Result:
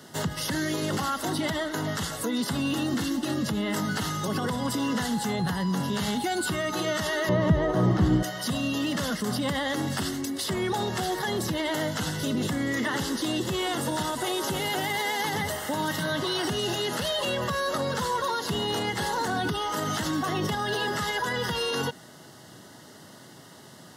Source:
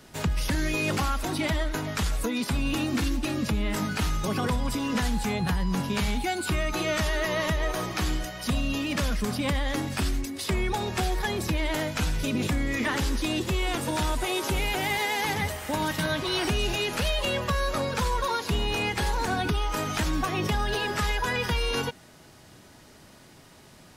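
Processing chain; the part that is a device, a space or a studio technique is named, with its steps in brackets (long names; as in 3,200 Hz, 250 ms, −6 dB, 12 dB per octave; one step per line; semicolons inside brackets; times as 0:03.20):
PA system with an anti-feedback notch (high-pass filter 110 Hz 24 dB per octave; Butterworth band-reject 2,400 Hz, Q 4.2; brickwall limiter −23.5 dBFS, peak gain reduction 9 dB)
0:07.29–0:08.23: spectral tilt −4.5 dB per octave
level +4 dB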